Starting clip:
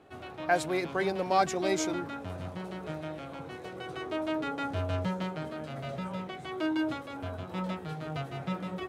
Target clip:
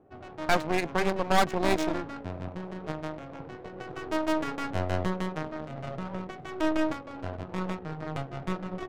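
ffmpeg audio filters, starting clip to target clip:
ffmpeg -i in.wav -af "adynamicsmooth=sensitivity=8:basefreq=680,aeval=exprs='0.237*(cos(1*acos(clip(val(0)/0.237,-1,1)))-cos(1*PI/2))+0.0668*(cos(6*acos(clip(val(0)/0.237,-1,1)))-cos(6*PI/2))':channel_layout=same" out.wav

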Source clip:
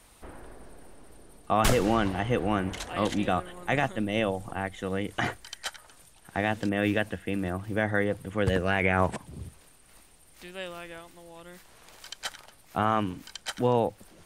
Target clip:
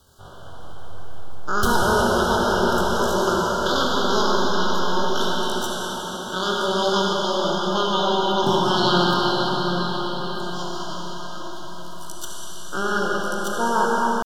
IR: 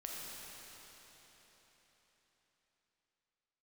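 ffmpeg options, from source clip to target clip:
-filter_complex "[0:a]asetrate=83250,aresample=44100,atempo=0.529732,asuperstop=centerf=2200:order=20:qfactor=1.7[link_01];[1:a]atrim=start_sample=2205,asetrate=26019,aresample=44100[link_02];[link_01][link_02]afir=irnorm=-1:irlink=0,volume=4.5dB"

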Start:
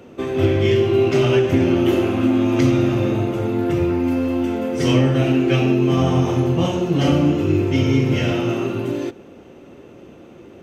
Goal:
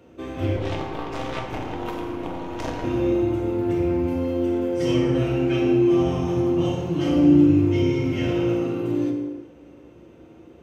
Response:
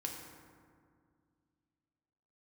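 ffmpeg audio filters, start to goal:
-filter_complex "[0:a]equalizer=frequency=67:width=5.8:gain=13,asettb=1/sr,asplit=3[link_01][link_02][link_03];[link_01]atrim=end=0.564[link_04];[link_02]atrim=start=0.56:end=2.84,asetpts=PTS-STARTPTS,afade=type=in:duration=0.004:curve=qsin,afade=type=out:start_time=2.276:duration=0.004:curve=qsin,aeval=exprs='0.562*(cos(1*acos(clip(val(0)/0.562,-1,1)))-cos(1*PI/2))+0.282*(cos(3*acos(clip(val(0)/0.562,-1,1)))-cos(3*PI/2))+0.0355*(cos(4*acos(clip(val(0)/0.562,-1,1)))-cos(4*PI/2))+0.0178*(cos(8*acos(clip(val(0)/0.562,-1,1)))-cos(8*PI/2))':channel_layout=same[link_05];[link_03]atrim=start=2.836[link_06];[link_04][link_05]acrossfade=duration=0.004:curve1=hsin:curve2=qsin[link_07];[link_07][link_06]acrossfade=duration=0.004:curve1=qsin:curve2=hsin[link_08];[1:a]atrim=start_sample=2205,afade=type=out:start_time=0.43:duration=0.01,atrim=end_sample=19404[link_09];[link_08][link_09]afir=irnorm=-1:irlink=0,volume=-7dB"

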